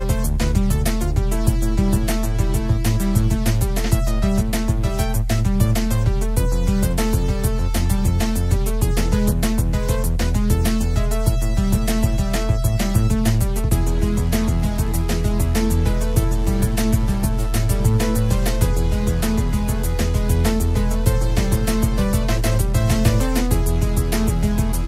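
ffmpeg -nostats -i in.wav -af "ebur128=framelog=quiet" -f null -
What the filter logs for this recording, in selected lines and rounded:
Integrated loudness:
  I:         -20.1 LUFS
  Threshold: -30.1 LUFS
Loudness range:
  LRA:         0.9 LU
  Threshold: -40.1 LUFS
  LRA low:   -20.4 LUFS
  LRA high:  -19.6 LUFS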